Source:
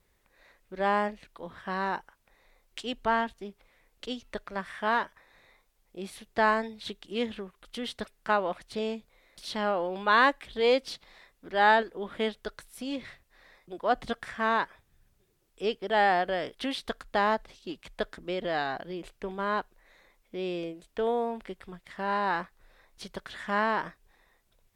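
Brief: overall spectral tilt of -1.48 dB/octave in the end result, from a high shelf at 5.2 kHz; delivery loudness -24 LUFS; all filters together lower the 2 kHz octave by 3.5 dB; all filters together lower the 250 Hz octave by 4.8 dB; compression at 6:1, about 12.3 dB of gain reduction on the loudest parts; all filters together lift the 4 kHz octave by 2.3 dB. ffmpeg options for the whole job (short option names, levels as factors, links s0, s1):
-af "equalizer=f=250:t=o:g=-6,equalizer=f=2000:t=o:g=-5,equalizer=f=4000:t=o:g=7.5,highshelf=f=5200:g=-7,acompressor=threshold=0.0251:ratio=6,volume=5.62"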